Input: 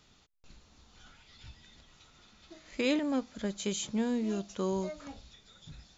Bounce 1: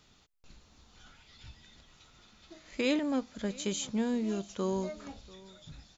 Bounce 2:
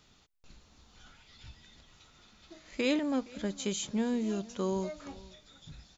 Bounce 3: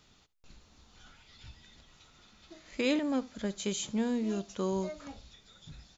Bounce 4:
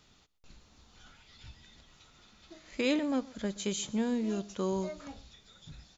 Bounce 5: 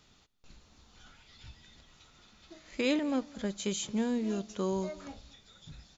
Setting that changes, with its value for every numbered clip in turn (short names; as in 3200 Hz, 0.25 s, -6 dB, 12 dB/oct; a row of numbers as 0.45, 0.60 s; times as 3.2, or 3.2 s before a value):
echo, time: 690, 467, 73, 125, 226 ms